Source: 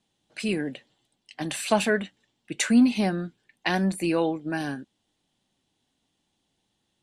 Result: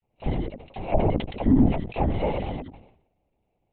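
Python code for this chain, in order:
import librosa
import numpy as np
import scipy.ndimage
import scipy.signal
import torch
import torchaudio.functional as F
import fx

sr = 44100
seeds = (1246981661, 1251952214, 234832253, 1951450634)

y = fx.reverse_delay(x, sr, ms=144, wet_db=-2.0)
y = fx.sample_hold(y, sr, seeds[0], rate_hz=1700.0, jitter_pct=0)
y = fx.fixed_phaser(y, sr, hz=350.0, stages=6)
y = fx.env_lowpass_down(y, sr, base_hz=710.0, full_db=-18.5)
y = fx.air_absorb(y, sr, metres=300.0)
y = fx.dispersion(y, sr, late='lows', ms=59.0, hz=1500.0)
y = fx.stretch_grains(y, sr, factor=0.53, grain_ms=42.0)
y = fx.lpc_vocoder(y, sr, seeds[1], excitation='whisper', order=10)
y = fx.sustainer(y, sr, db_per_s=82.0)
y = F.gain(torch.from_numpy(y), 4.5).numpy()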